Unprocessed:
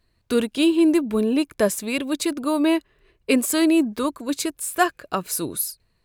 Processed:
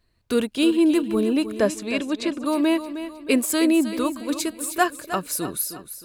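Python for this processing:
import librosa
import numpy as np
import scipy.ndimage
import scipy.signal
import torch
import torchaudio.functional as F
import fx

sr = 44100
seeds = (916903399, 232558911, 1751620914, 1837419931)

p1 = fx.lowpass(x, sr, hz=fx.line((1.57, 8200.0), (2.44, 3600.0)), slope=12, at=(1.57, 2.44), fade=0.02)
p2 = p1 + fx.echo_feedback(p1, sr, ms=312, feedback_pct=43, wet_db=-11.5, dry=0)
y = p2 * 10.0 ** (-1.0 / 20.0)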